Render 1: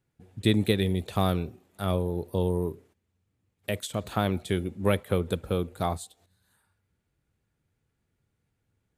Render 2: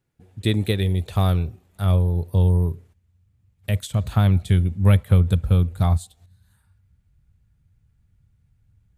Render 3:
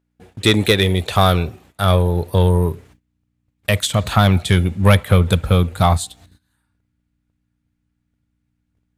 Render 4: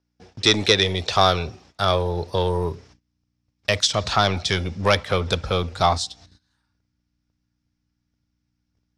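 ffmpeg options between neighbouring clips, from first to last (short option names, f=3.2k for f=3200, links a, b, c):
-af "asubboost=boost=11.5:cutoff=110,volume=1.5dB"
-filter_complex "[0:a]aeval=exprs='val(0)+0.00178*(sin(2*PI*60*n/s)+sin(2*PI*2*60*n/s)/2+sin(2*PI*3*60*n/s)/3+sin(2*PI*4*60*n/s)/4+sin(2*PI*5*60*n/s)/5)':c=same,agate=range=-18dB:threshold=-50dB:ratio=16:detection=peak,asplit=2[a][b];[b]highpass=f=720:p=1,volume=17dB,asoftclip=type=tanh:threshold=-5dB[c];[a][c]amix=inputs=2:normalize=0,lowpass=f=6.1k:p=1,volume=-6dB,volume=5dB"
-filter_complex "[0:a]acrossover=split=290|1100[a][b][c];[a]asoftclip=type=tanh:threshold=-21dB[d];[b]crystalizer=i=9.5:c=0[e];[d][e][c]amix=inputs=3:normalize=0,lowpass=f=5.4k:t=q:w=6.6,volume=-4dB"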